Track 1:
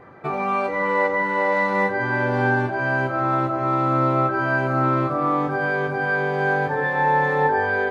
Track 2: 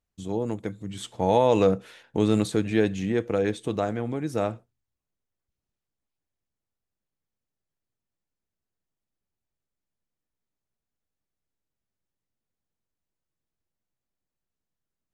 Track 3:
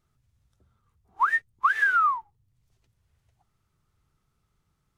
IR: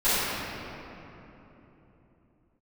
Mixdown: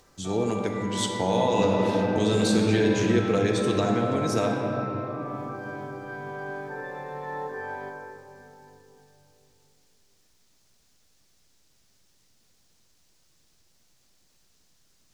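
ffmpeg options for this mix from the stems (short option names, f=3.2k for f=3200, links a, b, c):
-filter_complex "[0:a]volume=-17dB,asplit=2[a][b];[b]volume=-19dB[c];[1:a]equalizer=f=5.3k:w=0.78:g=11.5,volume=0.5dB,asplit=2[d][e];[e]volume=-19.5dB[f];[d]acompressor=mode=upward:threshold=-47dB:ratio=2.5,alimiter=limit=-14dB:level=0:latency=1:release=270,volume=0dB[g];[3:a]atrim=start_sample=2205[h];[c][f]amix=inputs=2:normalize=0[i];[i][h]afir=irnorm=-1:irlink=0[j];[a][g][j]amix=inputs=3:normalize=0,acrossover=split=300[k][l];[l]acompressor=threshold=-21dB:ratio=4[m];[k][m]amix=inputs=2:normalize=0"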